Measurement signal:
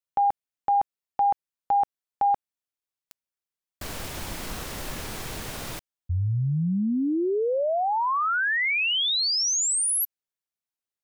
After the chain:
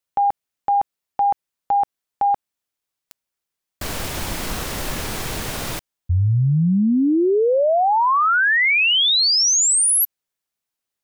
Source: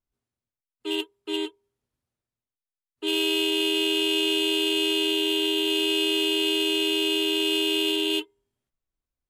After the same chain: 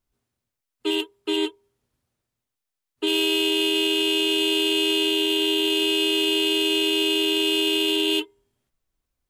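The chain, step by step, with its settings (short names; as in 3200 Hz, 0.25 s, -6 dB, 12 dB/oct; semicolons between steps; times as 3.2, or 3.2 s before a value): limiter -21.5 dBFS; gain +8 dB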